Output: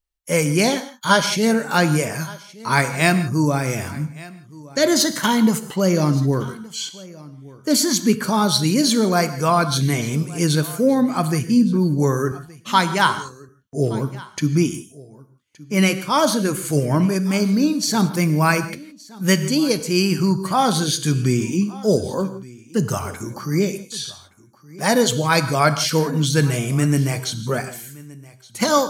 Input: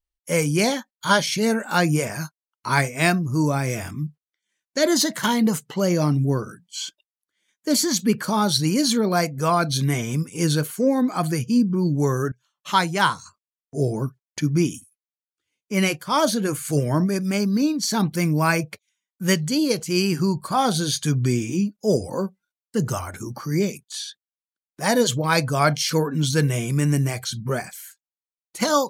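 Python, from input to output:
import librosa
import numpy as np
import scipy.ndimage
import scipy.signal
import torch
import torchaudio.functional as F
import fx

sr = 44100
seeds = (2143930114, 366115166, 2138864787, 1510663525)

p1 = x + fx.echo_single(x, sr, ms=1170, db=-21.5, dry=0)
p2 = fx.rev_gated(p1, sr, seeds[0], gate_ms=190, shape='flat', drr_db=11.0)
y = p2 * librosa.db_to_amplitude(2.5)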